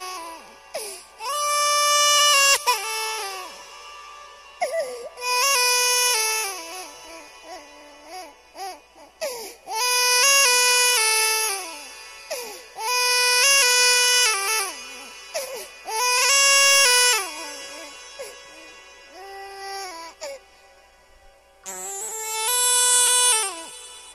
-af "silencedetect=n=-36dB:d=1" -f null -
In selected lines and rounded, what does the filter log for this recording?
silence_start: 20.37
silence_end: 21.66 | silence_duration: 1.29